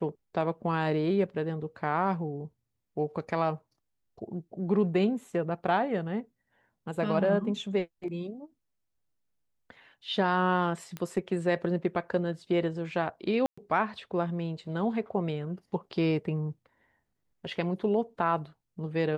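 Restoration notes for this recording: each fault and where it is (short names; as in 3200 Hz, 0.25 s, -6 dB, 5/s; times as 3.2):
10.97 pop -22 dBFS
13.46–13.57 gap 0.115 s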